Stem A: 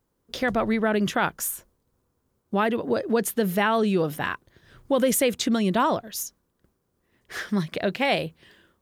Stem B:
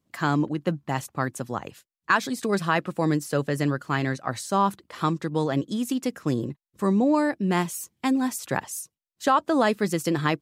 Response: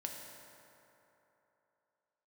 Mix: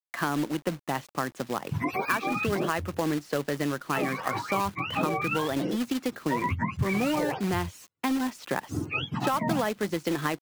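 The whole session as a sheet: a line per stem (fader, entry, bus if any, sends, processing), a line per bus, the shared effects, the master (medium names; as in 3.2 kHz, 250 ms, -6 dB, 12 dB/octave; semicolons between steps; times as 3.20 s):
+1.0 dB, 1.40 s, no send, spectrum inverted on a logarithmic axis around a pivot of 720 Hz; gate -53 dBFS, range -15 dB
+2.5 dB, 0.00 s, no send, three-band isolator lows -14 dB, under 160 Hz, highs -24 dB, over 4.4 kHz; companded quantiser 4-bit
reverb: none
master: compression 3:1, threshold -26 dBFS, peak gain reduction 10.5 dB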